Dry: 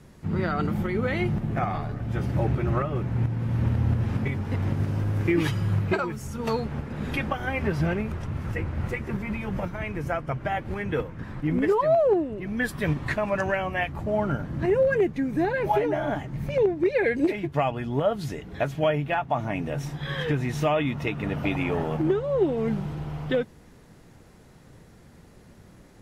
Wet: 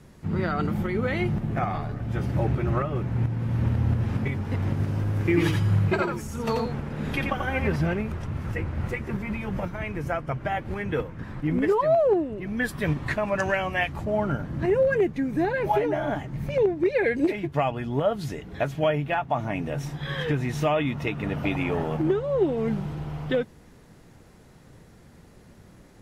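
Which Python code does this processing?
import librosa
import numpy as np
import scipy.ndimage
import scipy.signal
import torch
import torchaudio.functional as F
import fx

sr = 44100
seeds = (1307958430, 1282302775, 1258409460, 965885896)

y = fx.echo_single(x, sr, ms=87, db=-4.5, at=(5.21, 7.76))
y = fx.peak_eq(y, sr, hz=6300.0, db=6.0, octaves=2.8, at=(13.39, 14.05))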